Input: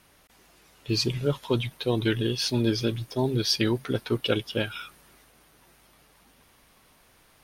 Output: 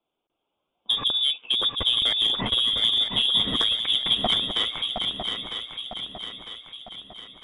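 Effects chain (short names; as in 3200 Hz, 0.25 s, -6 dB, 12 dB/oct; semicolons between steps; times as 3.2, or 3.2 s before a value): Wiener smoothing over 25 samples; HPF 74 Hz; inverted band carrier 3600 Hz; in parallel at +1 dB: limiter -19 dBFS, peak gain reduction 9 dB; on the sum: compressor 6:1, threshold -27 dBFS, peak gain reduction 12 dB; soft clip -20.5 dBFS, distortion -19 dB; low-pass opened by the level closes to 310 Hz, open at -27 dBFS; swung echo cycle 0.953 s, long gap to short 3:1, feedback 48%, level -5.5 dB; gain +7.5 dB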